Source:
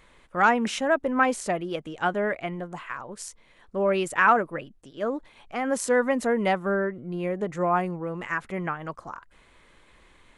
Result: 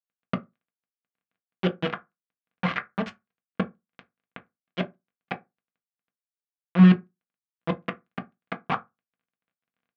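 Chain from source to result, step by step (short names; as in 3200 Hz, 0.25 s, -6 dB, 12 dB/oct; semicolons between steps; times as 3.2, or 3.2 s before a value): bell 340 Hz -4 dB 1.1 oct; in parallel at +2 dB: compressor 12:1, threshold -30 dBFS, peak gain reduction 16.5 dB; on the sum: flipped gate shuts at -19 dBFS, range -40 dB; bit-crush 5-bit; crackle 11/s -61 dBFS; on a send at -4 dB: reverb RT60 0.20 s, pre-delay 3 ms; on the sum: speed mistake 24 fps film run at 25 fps; speaker cabinet 100–2900 Hz, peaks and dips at 200 Hz +7 dB, 450 Hz -4 dB, 830 Hz -5 dB; gain +6.5 dB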